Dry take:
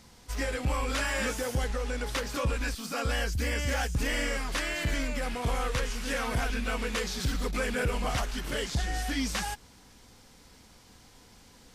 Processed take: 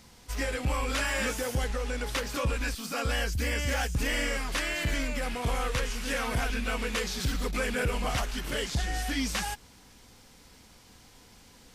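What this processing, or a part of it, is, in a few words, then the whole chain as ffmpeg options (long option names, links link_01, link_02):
presence and air boost: -af "equalizer=frequency=2600:width_type=o:width=0.77:gain=2,highshelf=frequency=12000:gain=4.5"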